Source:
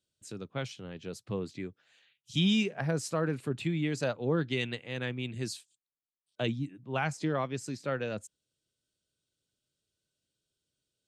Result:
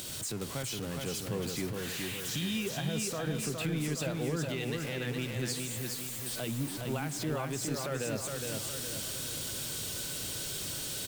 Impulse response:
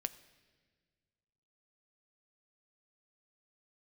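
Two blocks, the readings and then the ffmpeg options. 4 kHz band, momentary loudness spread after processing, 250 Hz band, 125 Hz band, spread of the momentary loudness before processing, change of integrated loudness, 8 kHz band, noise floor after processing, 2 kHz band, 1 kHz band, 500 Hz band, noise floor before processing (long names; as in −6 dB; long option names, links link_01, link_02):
+2.0 dB, 3 LU, −2.5 dB, −0.5 dB, 13 LU, −1.0 dB, +12.0 dB, −39 dBFS, −1.0 dB, −2.5 dB, −1.5 dB, below −85 dBFS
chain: -filter_complex "[0:a]aeval=exprs='val(0)+0.5*0.0106*sgn(val(0))':channel_layout=same,acompressor=mode=upward:threshold=-39dB:ratio=2.5,asplit=2[link_01][link_02];[1:a]atrim=start_sample=2205,asetrate=37044,aresample=44100,highshelf=frequency=5800:gain=11.5[link_03];[link_02][link_03]afir=irnorm=-1:irlink=0,volume=-2dB[link_04];[link_01][link_04]amix=inputs=2:normalize=0,alimiter=limit=-22dB:level=0:latency=1:release=139,aecho=1:1:414|828|1242|1656|2070|2484:0.631|0.309|0.151|0.0742|0.0364|0.0178,volume=-4.5dB"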